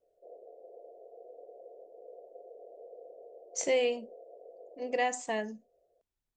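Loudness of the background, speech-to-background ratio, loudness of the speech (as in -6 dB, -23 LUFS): -51.5 LUFS, 19.0 dB, -32.5 LUFS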